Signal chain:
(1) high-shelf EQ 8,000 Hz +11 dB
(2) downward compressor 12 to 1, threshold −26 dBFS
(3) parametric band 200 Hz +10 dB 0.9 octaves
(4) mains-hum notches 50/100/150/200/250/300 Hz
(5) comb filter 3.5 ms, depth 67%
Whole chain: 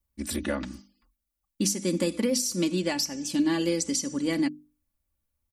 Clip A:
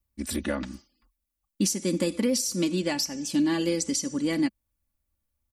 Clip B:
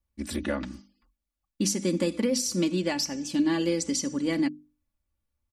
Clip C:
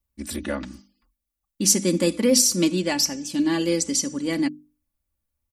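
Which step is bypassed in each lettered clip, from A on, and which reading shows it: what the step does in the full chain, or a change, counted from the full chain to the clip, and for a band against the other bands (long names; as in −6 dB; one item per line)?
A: 4, change in crest factor −2.0 dB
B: 1, 8 kHz band −2.0 dB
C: 2, average gain reduction 3.5 dB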